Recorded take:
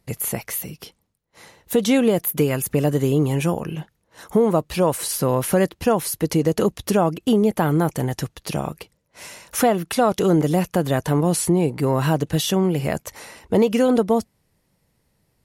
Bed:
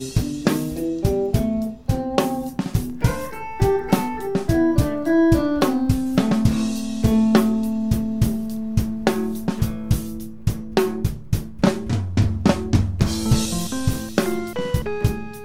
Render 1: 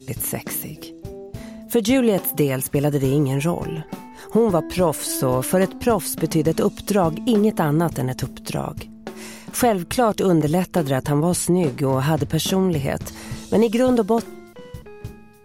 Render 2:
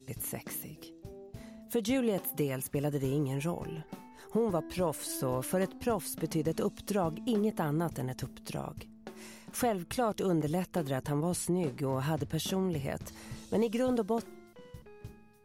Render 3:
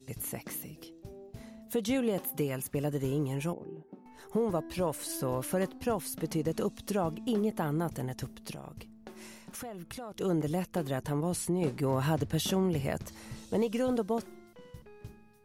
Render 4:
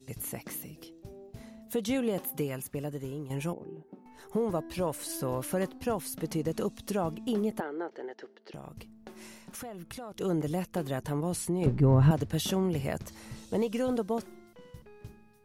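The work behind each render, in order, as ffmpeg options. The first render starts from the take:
-filter_complex "[1:a]volume=0.178[s0];[0:a][s0]amix=inputs=2:normalize=0"
-af "volume=0.237"
-filter_complex "[0:a]asettb=1/sr,asplit=3[s0][s1][s2];[s0]atrim=end=3.534[s3];[s1]atrim=start=3.53:end=4.06,asetpts=PTS-STARTPTS,afade=t=in:d=0.004:c=qsin,afade=t=out:st=0.526:d=0.004:c=qsin,bandpass=f=330:t=q:w=1.5[s4];[s2]atrim=start=4.056[s5];[s3][s4]acrossfade=d=0.004:c1=hsin:c2=qsin[s6];[s6][s5]acrossfade=d=0.004:c1=qsin:c2=hsin,asettb=1/sr,asplit=3[s7][s8][s9];[s7]atrim=end=8.514[s10];[s8]atrim=start=8.51:end=10.21,asetpts=PTS-STARTPTS,afade=t=in:d=0.004:c=qsin,afade=t=out:st=1.696:d=0.004:c=qsin,acompressor=threshold=0.0112:ratio=5:attack=3.2:release=140:knee=1:detection=peak[s11];[s9]atrim=start=10.206[s12];[s10][s11]acrossfade=d=0.004:c1=hsin:c2=qsin[s13];[s13][s12]acrossfade=d=0.004:c1=qsin:c2=hsin,asplit=3[s14][s15][s16];[s14]atrim=end=11.622[s17];[s15]atrim=start=11.618:end=13.022,asetpts=PTS-STARTPTS,volume=1.41[s18];[s16]atrim=start=13.018[s19];[s17][s18]acrossfade=d=0.004:c1=hsin:c2=hsin[s20];[s20][s19]acrossfade=d=0.004:c1=hsin:c2=hsin"
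-filter_complex "[0:a]asettb=1/sr,asplit=3[s0][s1][s2];[s0]atrim=end=7.604[s3];[s1]atrim=start=7.6:end=8.54,asetpts=PTS-STARTPTS,afade=t=in:d=0.004:c=qsin,afade=t=out:st=0.936:d=0.004:c=qsin,highpass=f=370:w=0.5412,highpass=f=370:w=1.3066,equalizer=f=380:t=q:w=4:g=7,equalizer=f=660:t=q:w=4:g=-4,equalizer=f=1100:t=q:w=4:g=-9,equalizer=f=1600:t=q:w=4:g=3,equalizer=f=2500:t=q:w=4:g=-9,equalizer=f=3600:t=q:w=4:g=-8,lowpass=f=3900:w=0.5412,lowpass=f=3900:w=1.3066[s4];[s2]atrim=start=8.536[s5];[s3][s4]acrossfade=d=0.004:c1=hsin:c2=qsin[s6];[s6][s5]acrossfade=d=0.004:c1=qsin:c2=hsin,asettb=1/sr,asplit=3[s7][s8][s9];[s7]atrim=end=11.664[s10];[s8]atrim=start=11.66:end=12.11,asetpts=PTS-STARTPTS,afade=t=in:d=0.004:c=qsin,afade=t=out:st=0.446:d=0.004:c=qsin,aemphasis=mode=reproduction:type=riaa[s11];[s9]atrim=start=12.106[s12];[s10][s11]acrossfade=d=0.004:c1=hsin:c2=qsin[s13];[s13][s12]acrossfade=d=0.004:c1=qsin:c2=hsin,asplit=2[s14][s15];[s14]atrim=end=3.3,asetpts=PTS-STARTPTS,afade=t=out:st=2.31:d=0.99:silence=0.334965[s16];[s15]atrim=start=3.3,asetpts=PTS-STARTPTS,afade=t=in:d=0.004:c=hsin:silence=0.334965[s17];[s16][s17]concat=n=2:v=0:a=1"

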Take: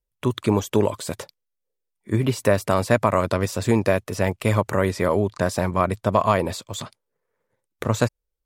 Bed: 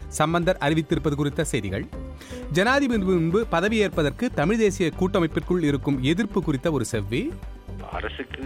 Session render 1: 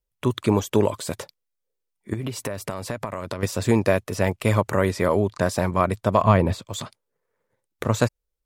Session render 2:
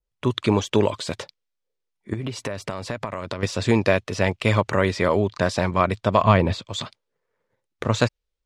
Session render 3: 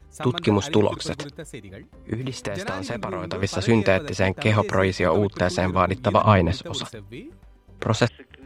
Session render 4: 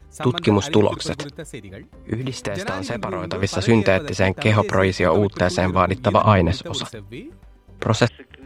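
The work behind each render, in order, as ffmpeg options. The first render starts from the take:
-filter_complex "[0:a]asettb=1/sr,asplit=3[s0][s1][s2];[s0]atrim=end=2.134[s3];[s1]atrim=start=2.13:end=3.43,asetpts=PTS-STARTPTS,afade=t=in:d=0.004:c=qsin,afade=t=out:st=1.296:d=0.004:c=qsin,acompressor=threshold=0.0631:ratio=16:attack=3.2:release=140:knee=1:detection=peak[s4];[s2]atrim=start=3.426[s5];[s3][s4]acrossfade=d=0.004:c1=hsin:c2=qsin[s6];[s6][s5]acrossfade=d=0.004:c1=qsin:c2=hsin,asettb=1/sr,asplit=3[s7][s8][s9];[s7]atrim=end=6.224[s10];[s8]atrim=start=6.22:end=6.65,asetpts=PTS-STARTPTS,afade=t=in:d=0.004:c=qsin,afade=t=out:st=0.426:d=0.004:c=qsin,bass=f=250:g=9,treble=f=4000:g=-8[s11];[s9]atrim=start=6.646[s12];[s10][s11]acrossfade=d=0.004:c1=hsin:c2=qsin[s13];[s13][s12]acrossfade=d=0.004:c1=qsin:c2=hsin"
-af "lowpass=6200,adynamicequalizer=threshold=0.00891:dfrequency=3400:dqfactor=0.75:tfrequency=3400:tqfactor=0.75:attack=5:release=100:ratio=0.375:range=3.5:mode=boostabove:tftype=bell"
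-filter_complex "[1:a]volume=0.224[s0];[0:a][s0]amix=inputs=2:normalize=0"
-af "volume=1.41,alimiter=limit=0.794:level=0:latency=1"

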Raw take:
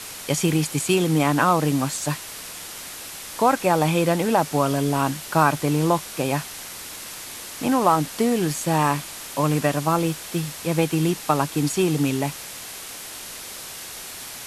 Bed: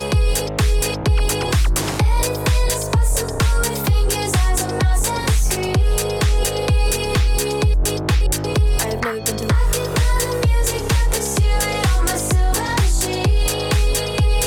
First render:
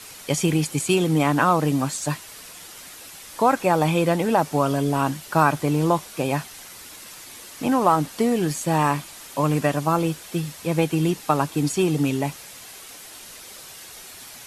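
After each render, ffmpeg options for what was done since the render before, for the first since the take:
-af "afftdn=nr=7:nf=-37"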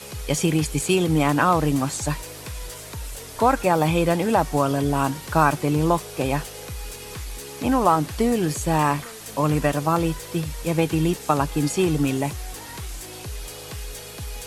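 -filter_complex "[1:a]volume=0.119[s0];[0:a][s0]amix=inputs=2:normalize=0"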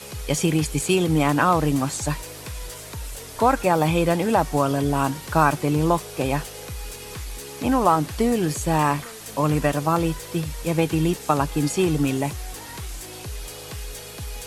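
-af anull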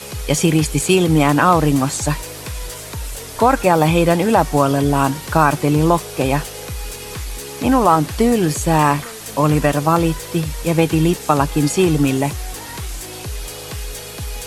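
-af "volume=2,alimiter=limit=0.891:level=0:latency=1"

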